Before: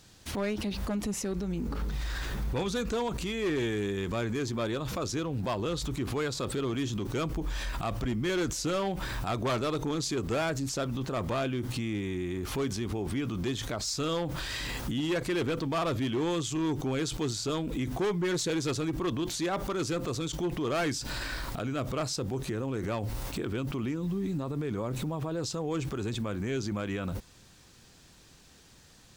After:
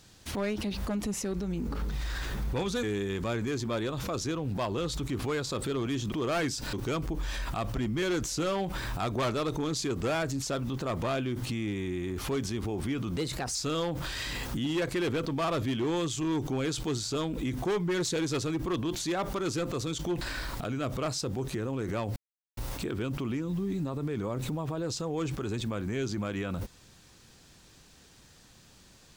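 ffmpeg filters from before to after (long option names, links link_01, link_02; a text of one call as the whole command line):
ffmpeg -i in.wav -filter_complex "[0:a]asplit=8[link_01][link_02][link_03][link_04][link_05][link_06][link_07][link_08];[link_01]atrim=end=2.832[link_09];[link_02]atrim=start=3.708:end=7.002[link_10];[link_03]atrim=start=20.548:end=21.162[link_11];[link_04]atrim=start=6.998:end=13.444[link_12];[link_05]atrim=start=13.44:end=13.89,asetpts=PTS-STARTPTS,asetrate=52038,aresample=44100[link_13];[link_06]atrim=start=13.886:end=20.552[link_14];[link_07]atrim=start=21.158:end=23.11,asetpts=PTS-STARTPTS,afade=type=out:start_time=1.948:duration=0.004:curve=hsin,apad=pad_dur=0.41[link_15];[link_08]atrim=start=23.11,asetpts=PTS-STARTPTS,afade=type=in:duration=0.004:curve=hsin[link_16];[link_09][link_10]acrossfade=duration=0.004:curve1=hsin:curve2=hsin[link_17];[link_17][link_11]acrossfade=duration=0.004:curve1=hsin:curve2=hsin[link_18];[link_18][link_12]acrossfade=duration=0.004:curve1=hsin:curve2=hsin[link_19];[link_19][link_13]acrossfade=duration=0.004:curve1=hsin:curve2=hsin[link_20];[link_20][link_14]acrossfade=duration=0.004:curve1=hsin:curve2=hsin[link_21];[link_15][link_16]concat=n=2:v=0:a=1[link_22];[link_21][link_22]acrossfade=duration=0.004:curve1=hsin:curve2=hsin" out.wav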